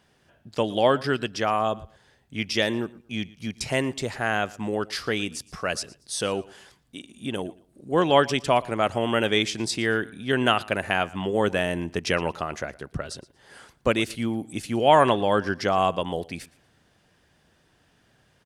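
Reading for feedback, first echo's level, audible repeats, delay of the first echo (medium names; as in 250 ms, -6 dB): 25%, -21.5 dB, 2, 116 ms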